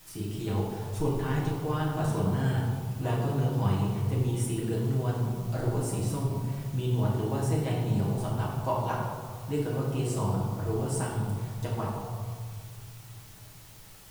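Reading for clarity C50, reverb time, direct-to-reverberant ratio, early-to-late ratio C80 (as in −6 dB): 1.0 dB, 1.9 s, −6.0 dB, 3.0 dB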